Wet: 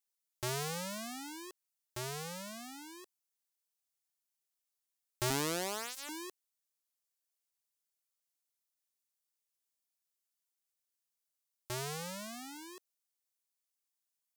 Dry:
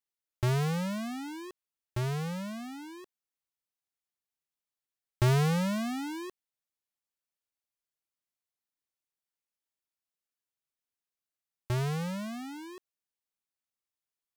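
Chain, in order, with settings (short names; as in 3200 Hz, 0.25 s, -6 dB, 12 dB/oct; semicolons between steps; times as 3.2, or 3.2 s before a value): 5.3–6.09 minimum comb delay 1.9 ms; tone controls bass -12 dB, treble +10 dB; gain -4 dB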